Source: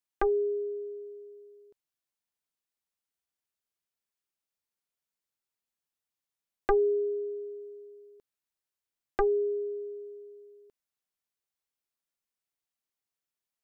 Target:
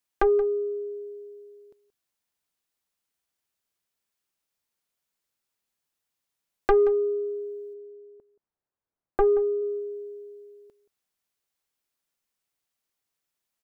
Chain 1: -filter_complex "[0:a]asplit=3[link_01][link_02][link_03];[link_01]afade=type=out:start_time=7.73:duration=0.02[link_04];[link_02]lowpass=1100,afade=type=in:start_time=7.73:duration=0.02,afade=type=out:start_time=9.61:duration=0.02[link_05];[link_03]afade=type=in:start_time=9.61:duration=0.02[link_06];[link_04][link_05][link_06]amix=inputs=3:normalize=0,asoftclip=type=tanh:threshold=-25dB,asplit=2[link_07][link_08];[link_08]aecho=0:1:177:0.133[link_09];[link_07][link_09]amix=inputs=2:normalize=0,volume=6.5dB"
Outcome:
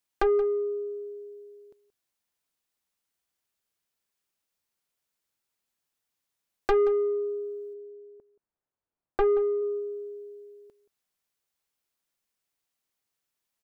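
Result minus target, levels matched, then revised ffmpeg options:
soft clipping: distortion +9 dB
-filter_complex "[0:a]asplit=3[link_01][link_02][link_03];[link_01]afade=type=out:start_time=7.73:duration=0.02[link_04];[link_02]lowpass=1100,afade=type=in:start_time=7.73:duration=0.02,afade=type=out:start_time=9.61:duration=0.02[link_05];[link_03]afade=type=in:start_time=9.61:duration=0.02[link_06];[link_04][link_05][link_06]amix=inputs=3:normalize=0,asoftclip=type=tanh:threshold=-18.5dB,asplit=2[link_07][link_08];[link_08]aecho=0:1:177:0.133[link_09];[link_07][link_09]amix=inputs=2:normalize=0,volume=6.5dB"

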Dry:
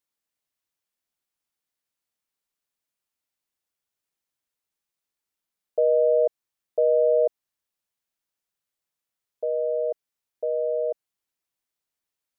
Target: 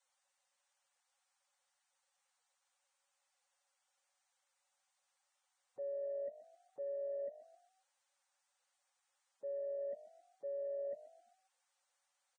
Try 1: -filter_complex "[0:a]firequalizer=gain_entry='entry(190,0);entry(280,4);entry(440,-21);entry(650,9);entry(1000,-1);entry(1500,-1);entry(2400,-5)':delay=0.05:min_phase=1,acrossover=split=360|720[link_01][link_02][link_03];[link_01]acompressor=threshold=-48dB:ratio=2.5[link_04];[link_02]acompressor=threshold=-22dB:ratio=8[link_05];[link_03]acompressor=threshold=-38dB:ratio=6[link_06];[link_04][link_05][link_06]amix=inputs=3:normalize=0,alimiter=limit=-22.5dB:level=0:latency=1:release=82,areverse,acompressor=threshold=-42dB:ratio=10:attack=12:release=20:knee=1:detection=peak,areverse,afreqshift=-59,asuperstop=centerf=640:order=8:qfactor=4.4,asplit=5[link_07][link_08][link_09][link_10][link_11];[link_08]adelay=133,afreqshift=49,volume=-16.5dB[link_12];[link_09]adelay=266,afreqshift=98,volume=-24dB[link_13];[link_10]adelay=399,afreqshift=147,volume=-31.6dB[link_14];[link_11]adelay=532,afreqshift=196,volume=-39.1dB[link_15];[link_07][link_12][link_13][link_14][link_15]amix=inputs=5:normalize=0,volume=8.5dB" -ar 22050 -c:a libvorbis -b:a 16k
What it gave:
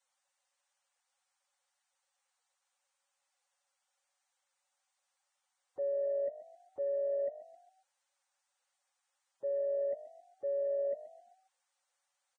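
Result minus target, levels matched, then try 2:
downward compressor: peak gain reduction −7.5 dB
-filter_complex "[0:a]firequalizer=gain_entry='entry(190,0);entry(280,4);entry(440,-21);entry(650,9);entry(1000,-1);entry(1500,-1);entry(2400,-5)':delay=0.05:min_phase=1,acrossover=split=360|720[link_01][link_02][link_03];[link_01]acompressor=threshold=-48dB:ratio=2.5[link_04];[link_02]acompressor=threshold=-22dB:ratio=8[link_05];[link_03]acompressor=threshold=-38dB:ratio=6[link_06];[link_04][link_05][link_06]amix=inputs=3:normalize=0,alimiter=limit=-22.5dB:level=0:latency=1:release=82,areverse,acompressor=threshold=-50.5dB:ratio=10:attack=12:release=20:knee=1:detection=peak,areverse,afreqshift=-59,asuperstop=centerf=640:order=8:qfactor=4.4,asplit=5[link_07][link_08][link_09][link_10][link_11];[link_08]adelay=133,afreqshift=49,volume=-16.5dB[link_12];[link_09]adelay=266,afreqshift=98,volume=-24dB[link_13];[link_10]adelay=399,afreqshift=147,volume=-31.6dB[link_14];[link_11]adelay=532,afreqshift=196,volume=-39.1dB[link_15];[link_07][link_12][link_13][link_14][link_15]amix=inputs=5:normalize=0,volume=8.5dB" -ar 22050 -c:a libvorbis -b:a 16k

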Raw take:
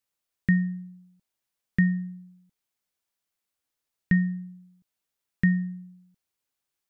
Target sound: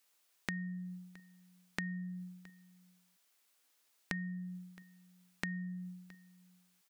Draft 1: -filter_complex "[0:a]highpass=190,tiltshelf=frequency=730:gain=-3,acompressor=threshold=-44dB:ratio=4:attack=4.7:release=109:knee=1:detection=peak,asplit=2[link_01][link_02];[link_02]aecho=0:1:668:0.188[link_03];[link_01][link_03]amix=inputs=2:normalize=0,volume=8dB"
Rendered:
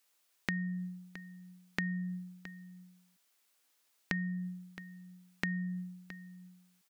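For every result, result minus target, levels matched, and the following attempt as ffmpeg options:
echo-to-direct +7 dB; downward compressor: peak gain reduction −4.5 dB
-filter_complex "[0:a]highpass=190,tiltshelf=frequency=730:gain=-3,acompressor=threshold=-44dB:ratio=4:attack=4.7:release=109:knee=1:detection=peak,asplit=2[link_01][link_02];[link_02]aecho=0:1:668:0.0841[link_03];[link_01][link_03]amix=inputs=2:normalize=0,volume=8dB"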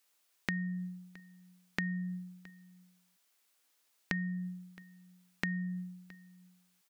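downward compressor: peak gain reduction −4.5 dB
-filter_complex "[0:a]highpass=190,tiltshelf=frequency=730:gain=-3,acompressor=threshold=-50dB:ratio=4:attack=4.7:release=109:knee=1:detection=peak,asplit=2[link_01][link_02];[link_02]aecho=0:1:668:0.0841[link_03];[link_01][link_03]amix=inputs=2:normalize=0,volume=8dB"

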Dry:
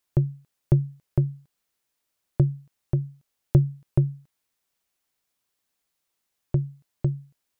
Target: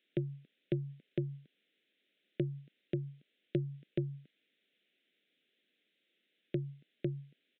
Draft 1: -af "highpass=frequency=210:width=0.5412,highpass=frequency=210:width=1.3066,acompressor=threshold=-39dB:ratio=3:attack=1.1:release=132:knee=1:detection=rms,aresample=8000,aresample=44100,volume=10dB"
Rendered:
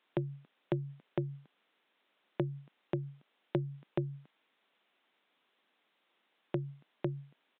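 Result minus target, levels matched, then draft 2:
1,000 Hz band +18.5 dB
-af "highpass=frequency=210:width=0.5412,highpass=frequency=210:width=1.3066,acompressor=threshold=-39dB:ratio=3:attack=1.1:release=132:knee=1:detection=rms,asuperstop=centerf=980:order=4:qfactor=0.66,aresample=8000,aresample=44100,volume=10dB"

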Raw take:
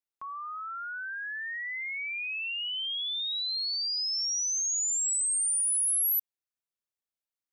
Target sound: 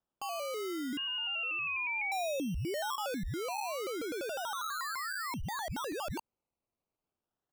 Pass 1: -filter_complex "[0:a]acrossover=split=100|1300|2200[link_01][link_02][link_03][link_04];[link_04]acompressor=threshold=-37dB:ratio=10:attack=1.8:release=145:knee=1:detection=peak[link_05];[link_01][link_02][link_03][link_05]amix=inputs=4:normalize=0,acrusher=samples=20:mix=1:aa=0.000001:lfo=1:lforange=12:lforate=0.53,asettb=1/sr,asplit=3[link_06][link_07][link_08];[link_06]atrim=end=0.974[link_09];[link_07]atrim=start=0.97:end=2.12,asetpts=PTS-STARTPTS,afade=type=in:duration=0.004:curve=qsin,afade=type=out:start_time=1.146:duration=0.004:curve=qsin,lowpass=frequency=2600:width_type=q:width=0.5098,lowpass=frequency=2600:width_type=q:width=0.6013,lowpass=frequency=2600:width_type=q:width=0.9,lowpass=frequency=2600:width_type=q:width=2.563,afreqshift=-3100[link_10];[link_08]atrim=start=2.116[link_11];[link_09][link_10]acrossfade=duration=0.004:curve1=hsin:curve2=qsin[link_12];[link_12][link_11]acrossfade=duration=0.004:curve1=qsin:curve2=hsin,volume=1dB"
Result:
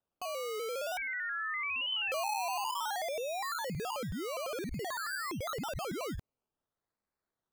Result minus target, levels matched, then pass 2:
sample-and-hold swept by an LFO: distortion +31 dB
-filter_complex "[0:a]acrossover=split=100|1300|2200[link_01][link_02][link_03][link_04];[link_04]acompressor=threshold=-37dB:ratio=10:attack=1.8:release=145:knee=1:detection=peak[link_05];[link_01][link_02][link_03][link_05]amix=inputs=4:normalize=0,acrusher=samples=20:mix=1:aa=0.000001:lfo=1:lforange=12:lforate=0.34,asettb=1/sr,asplit=3[link_06][link_07][link_08];[link_06]atrim=end=0.974[link_09];[link_07]atrim=start=0.97:end=2.12,asetpts=PTS-STARTPTS,afade=type=in:duration=0.004:curve=qsin,afade=type=out:start_time=1.146:duration=0.004:curve=qsin,lowpass=frequency=2600:width_type=q:width=0.5098,lowpass=frequency=2600:width_type=q:width=0.6013,lowpass=frequency=2600:width_type=q:width=0.9,lowpass=frequency=2600:width_type=q:width=2.563,afreqshift=-3100[link_10];[link_08]atrim=start=2.116[link_11];[link_09][link_10]acrossfade=duration=0.004:curve1=hsin:curve2=qsin[link_12];[link_12][link_11]acrossfade=duration=0.004:curve1=qsin:curve2=hsin,volume=1dB"

